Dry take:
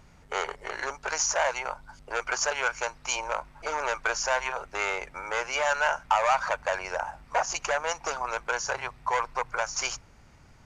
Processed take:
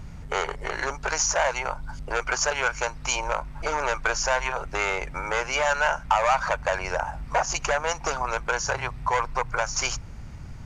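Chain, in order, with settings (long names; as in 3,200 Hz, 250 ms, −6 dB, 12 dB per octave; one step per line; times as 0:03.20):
bass and treble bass +11 dB, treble 0 dB
in parallel at +1 dB: downward compressor, threshold −34 dBFS, peak gain reduction 15 dB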